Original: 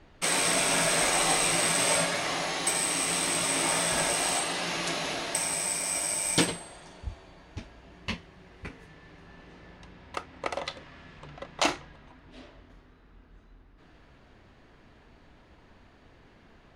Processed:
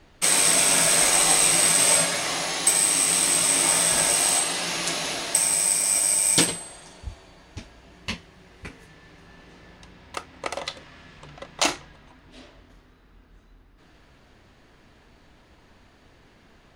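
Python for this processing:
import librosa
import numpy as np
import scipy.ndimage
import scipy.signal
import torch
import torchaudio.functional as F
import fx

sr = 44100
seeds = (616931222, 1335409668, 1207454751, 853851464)

y = fx.high_shelf(x, sr, hz=5000.0, db=11.0)
y = y * librosa.db_to_amplitude(1.0)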